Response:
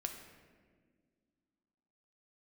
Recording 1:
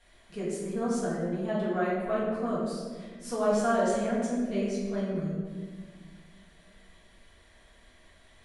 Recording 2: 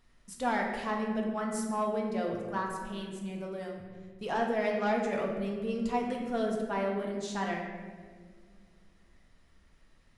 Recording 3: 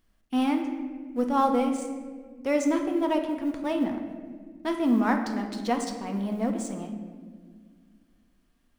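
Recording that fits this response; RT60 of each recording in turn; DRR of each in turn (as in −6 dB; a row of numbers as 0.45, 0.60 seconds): 3; 1.7, 1.7, 1.7 seconds; −10.0, −1.0, 3.5 decibels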